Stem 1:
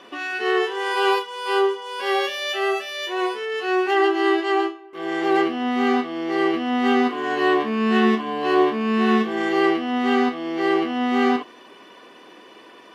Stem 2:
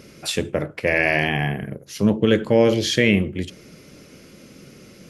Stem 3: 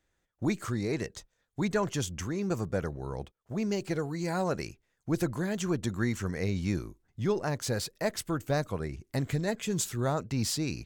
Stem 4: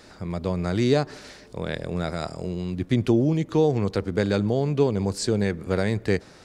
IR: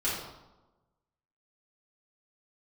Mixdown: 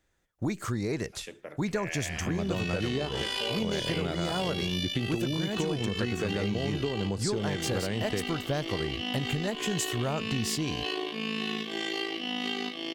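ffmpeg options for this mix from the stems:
-filter_complex "[0:a]highshelf=f=2.1k:t=q:w=1.5:g=13.5,tremolo=f=54:d=0.71,acompressor=threshold=-23dB:ratio=6,adelay=2400,volume=-5.5dB[a];[1:a]highpass=f=760:p=1,adelay=900,volume=-14.5dB[b];[2:a]volume=3dB[c];[3:a]acompressor=threshold=-21dB:ratio=6,adelay=2050,volume=0.5dB[d];[a][b][c][d]amix=inputs=4:normalize=0,acompressor=threshold=-26dB:ratio=6"

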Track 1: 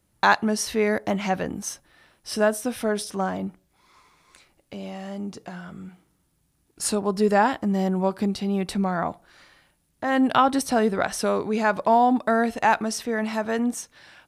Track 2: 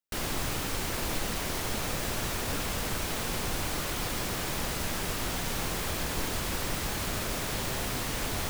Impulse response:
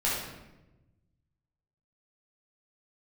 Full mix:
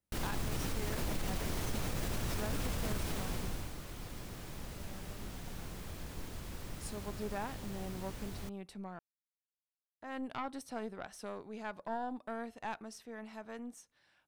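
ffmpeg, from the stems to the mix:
-filter_complex "[0:a]aeval=exprs='(tanh(2.51*val(0)+0.8)-tanh(0.8))/2.51':c=same,volume=-16.5dB,asplit=3[a][b][c];[a]atrim=end=8.99,asetpts=PTS-STARTPTS,afade=t=out:st=8.986:d=0.004:c=hsin[d];[b]atrim=start=8.99:end=10.01,asetpts=PTS-STARTPTS,volume=0[e];[c]atrim=start=10.01,asetpts=PTS-STARTPTS,afade=t=in:d=0.004:c=hsin[f];[d][e][f]concat=n=3:v=0:a=1[g];[1:a]lowshelf=f=330:g=9.5,volume=-7.5dB,afade=t=out:st=2.99:d=0.75:silence=0.298538[h];[g][h]amix=inputs=2:normalize=0,alimiter=level_in=2.5dB:limit=-24dB:level=0:latency=1:release=40,volume=-2.5dB"

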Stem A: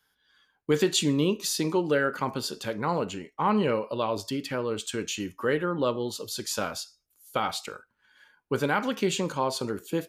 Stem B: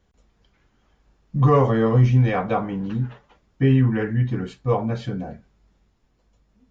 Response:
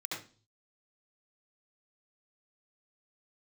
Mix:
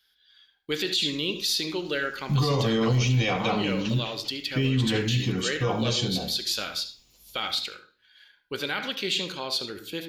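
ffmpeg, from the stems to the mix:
-filter_complex "[0:a]equalizer=f=125:t=o:w=1:g=-11,equalizer=f=250:t=o:w=1:g=-7,equalizer=f=500:t=o:w=1:g=-5,equalizer=f=1k:t=o:w=1:g=-11,equalizer=f=4k:t=o:w=1:g=11,equalizer=f=8k:t=o:w=1:g=-10,volume=1.5dB,asplit=2[a][b];[b]volume=-10dB[c];[1:a]acrossover=split=340[d][e];[e]acompressor=threshold=-23dB:ratio=2[f];[d][f]amix=inputs=2:normalize=0,aexciter=amount=8.1:drive=4.5:freq=2.5k,adelay=950,volume=-1.5dB,asplit=2[g][h];[h]volume=-12.5dB[i];[2:a]atrim=start_sample=2205[j];[c][i]amix=inputs=2:normalize=0[k];[k][j]afir=irnorm=-1:irlink=0[l];[a][g][l]amix=inputs=3:normalize=0,alimiter=limit=-16dB:level=0:latency=1:release=22"

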